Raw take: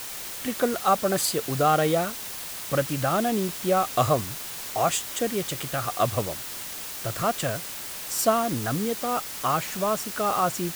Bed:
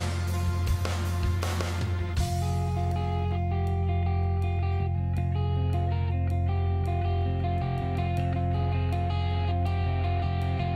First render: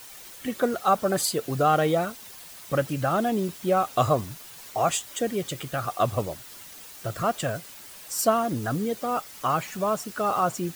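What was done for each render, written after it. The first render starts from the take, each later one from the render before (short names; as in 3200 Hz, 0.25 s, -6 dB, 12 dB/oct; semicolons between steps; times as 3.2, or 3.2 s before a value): denoiser 10 dB, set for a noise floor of -36 dBFS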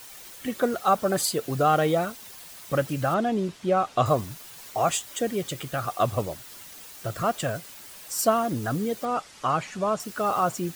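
3.14–4.06 air absorption 69 m; 9.05–10 Bessel low-pass 7000 Hz, order 6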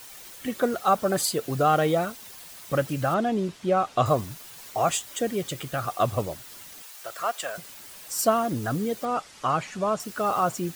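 6.82–7.58 HPF 690 Hz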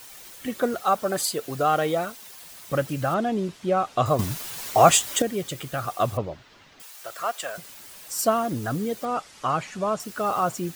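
0.82–2.42 low shelf 210 Hz -8 dB; 4.19–5.22 gain +9 dB; 6.17–6.8 air absorption 210 m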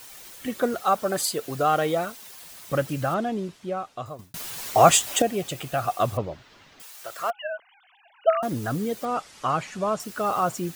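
2.96–4.34 fade out; 5.06–5.94 small resonant body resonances 720/2600 Hz, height 11 dB -> 8 dB, ringing for 20 ms; 7.3–8.43 sine-wave speech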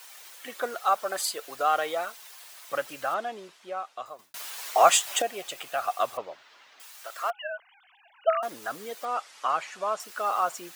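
HPF 720 Hz 12 dB/oct; high shelf 4800 Hz -4.5 dB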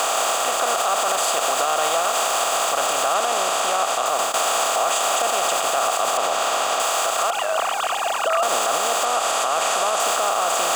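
per-bin compression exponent 0.2; limiter -11 dBFS, peak gain reduction 9.5 dB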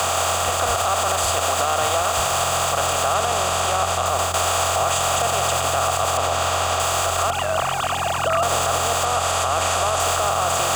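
add bed -6.5 dB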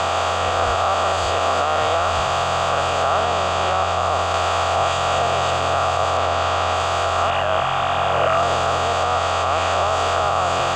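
spectral swells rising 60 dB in 1.49 s; air absorption 160 m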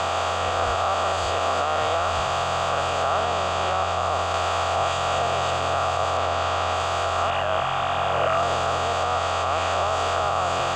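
gain -4 dB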